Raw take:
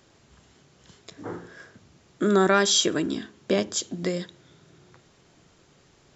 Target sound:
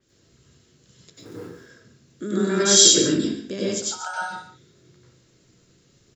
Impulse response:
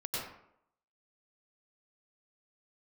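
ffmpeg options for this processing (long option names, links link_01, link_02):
-filter_complex "[0:a]firequalizer=gain_entry='entry(360,0);entry(800,-15);entry(1500,-10);entry(2700,-13)':delay=0.05:min_phase=1,asettb=1/sr,asplit=3[link_01][link_02][link_03];[link_01]atrim=end=2.604[link_04];[link_02]atrim=start=2.6:end=3.19,asetpts=PTS-STARTPTS,afade=type=in:duration=0.004:curve=qsin,afade=type=out:start_time=0.586:duration=0.004:curve=qsin,acontrast=47[link_05];[link_03]atrim=start=3.186[link_06];[link_04][link_05]acrossfade=duration=0.004:curve1=hsin:curve2=qsin[link_07];[link_07][link_06]acrossfade=duration=0.004:curve1=qsin:curve2=hsin,asplit=3[link_08][link_09][link_10];[link_08]afade=type=out:start_time=3.81:duration=0.02[link_11];[link_09]aeval=exprs='val(0)*sin(2*PI*1100*n/s)':channel_layout=same,afade=type=in:start_time=3.81:duration=0.02,afade=type=out:start_time=4.21:duration=0.02[link_12];[link_10]afade=type=in:start_time=4.21:duration=0.02[link_13];[link_11][link_12][link_13]amix=inputs=3:normalize=0,crystalizer=i=8:c=0,asettb=1/sr,asplit=3[link_14][link_15][link_16];[link_14]atrim=end=1.154[link_17];[link_15]atrim=start=1.15:end=1.57,asetpts=PTS-STARTPTS,afade=type=in:duration=0.004:curve=qsin,afade=type=out:start_time=0.416:duration=0.004:curve=qsin,acrusher=bits=4:mode=log:mix=0:aa=0.000001[link_18];[link_16]atrim=start=1.566[link_19];[link_17][link_18]acrossfade=duration=0.004:curve1=hsin:curve2=qsin[link_20];[link_20][link_19]acrossfade=duration=0.004:curve1=qsin:curve2=hsin,aecho=1:1:141:0.251[link_21];[1:a]atrim=start_sample=2205,afade=type=out:start_time=0.26:duration=0.01,atrim=end_sample=11907[link_22];[link_21][link_22]afir=irnorm=-1:irlink=0,adynamicequalizer=threshold=0.0631:dfrequency=4400:dqfactor=0.7:tfrequency=4400:tqfactor=0.7:attack=5:release=100:ratio=0.375:range=2.5:mode=boostabove:tftype=highshelf,volume=-4dB"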